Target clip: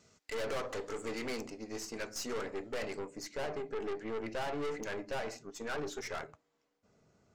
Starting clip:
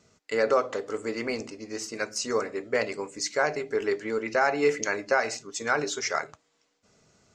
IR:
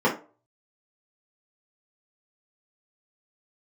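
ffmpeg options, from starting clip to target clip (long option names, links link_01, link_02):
-af "asetnsamples=nb_out_samples=441:pad=0,asendcmd='1.41 highshelf g -3;2.99 highshelf g -12',highshelf=frequency=2000:gain=3,aeval=exprs='(tanh(44.7*val(0)+0.55)-tanh(0.55))/44.7':channel_layout=same,volume=-1.5dB"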